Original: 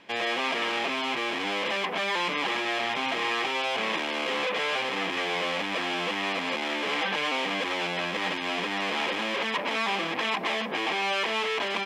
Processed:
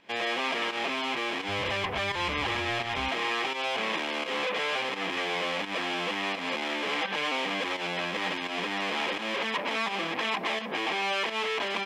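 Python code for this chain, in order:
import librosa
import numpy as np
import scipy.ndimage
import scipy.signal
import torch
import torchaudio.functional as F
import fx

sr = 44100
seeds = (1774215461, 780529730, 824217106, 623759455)

y = fx.octave_divider(x, sr, octaves=2, level_db=1.0, at=(1.48, 3.09))
y = fx.volume_shaper(y, sr, bpm=85, per_beat=1, depth_db=-9, release_ms=141.0, shape='fast start')
y = y * 10.0 ** (-1.5 / 20.0)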